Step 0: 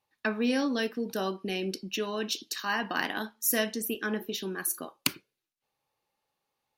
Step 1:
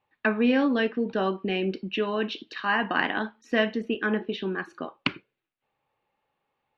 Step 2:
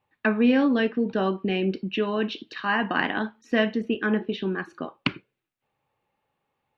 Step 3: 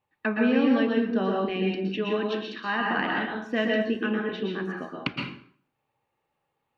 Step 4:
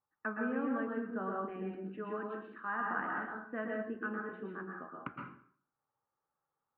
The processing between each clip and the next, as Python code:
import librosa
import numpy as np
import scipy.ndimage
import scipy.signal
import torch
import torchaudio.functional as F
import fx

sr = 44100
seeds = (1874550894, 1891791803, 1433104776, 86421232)

y1 = scipy.signal.sosfilt(scipy.signal.butter(4, 3000.0, 'lowpass', fs=sr, output='sos'), x)
y1 = y1 * 10.0 ** (5.5 / 20.0)
y2 = fx.peak_eq(y1, sr, hz=110.0, db=5.5, octaves=2.5)
y3 = fx.rev_plate(y2, sr, seeds[0], rt60_s=0.56, hf_ratio=0.8, predelay_ms=105, drr_db=-0.5)
y3 = y3 * 10.0 ** (-4.5 / 20.0)
y4 = fx.ladder_lowpass(y3, sr, hz=1500.0, resonance_pct=65)
y4 = y4 * 10.0 ** (-3.0 / 20.0)